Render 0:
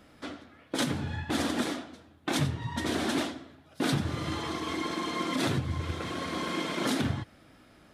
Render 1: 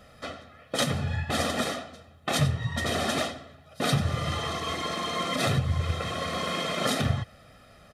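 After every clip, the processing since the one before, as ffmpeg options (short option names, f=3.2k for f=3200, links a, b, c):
-af "aecho=1:1:1.6:0.73,volume=2.5dB"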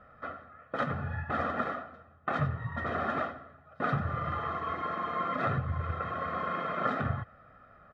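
-af "lowpass=f=1.4k:t=q:w=3,volume=-6.5dB"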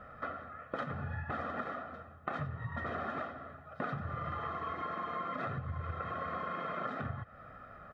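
-af "acompressor=threshold=-41dB:ratio=6,volume=5dB"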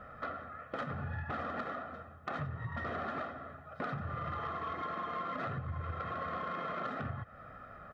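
-af "asoftclip=type=tanh:threshold=-30dB,volume=1dB"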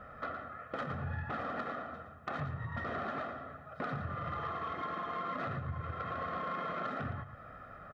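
-af "aecho=1:1:114:0.335"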